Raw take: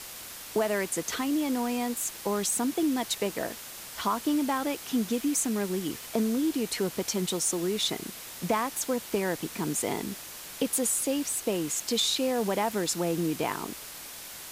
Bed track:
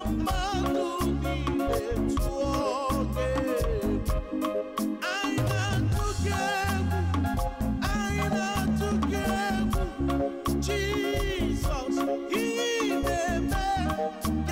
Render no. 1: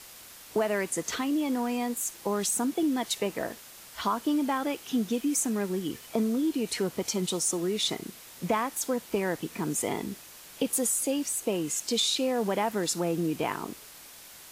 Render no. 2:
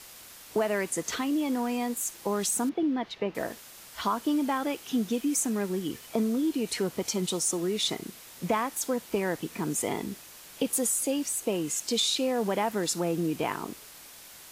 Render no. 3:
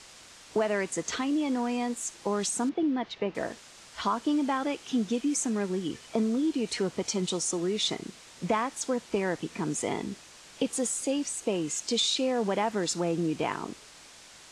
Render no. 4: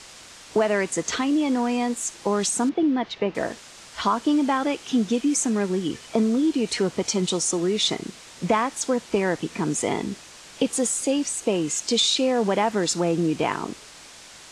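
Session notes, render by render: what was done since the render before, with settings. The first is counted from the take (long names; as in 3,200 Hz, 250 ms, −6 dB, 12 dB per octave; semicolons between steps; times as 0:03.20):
noise reduction from a noise print 6 dB
0:02.69–0:03.35: high-frequency loss of the air 280 metres
low-pass filter 8,200 Hz 24 dB per octave
level +6 dB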